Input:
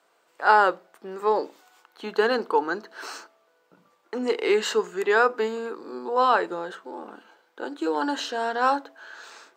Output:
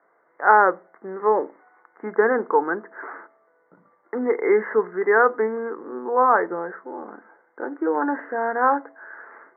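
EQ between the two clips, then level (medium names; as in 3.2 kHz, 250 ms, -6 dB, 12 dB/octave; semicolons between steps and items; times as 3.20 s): Chebyshev low-pass 2.1 kHz, order 8; +3.5 dB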